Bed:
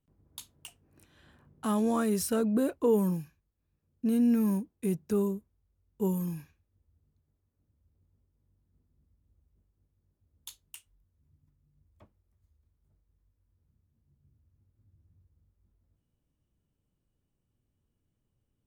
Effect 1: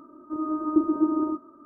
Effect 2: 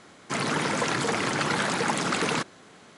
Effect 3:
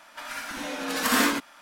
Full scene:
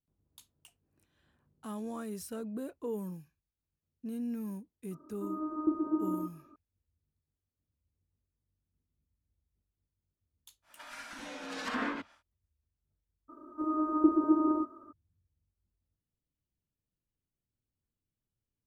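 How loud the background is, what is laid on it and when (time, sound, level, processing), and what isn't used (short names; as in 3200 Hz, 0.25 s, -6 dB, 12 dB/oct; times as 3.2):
bed -12 dB
4.91 add 1 -8.5 dB
10.62 add 3 -10.5 dB, fades 0.10 s + treble ducked by the level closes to 2000 Hz, closed at -19 dBFS
13.28 add 1 -0.5 dB, fades 0.02 s + bell 150 Hz -11 dB 1.2 oct
not used: 2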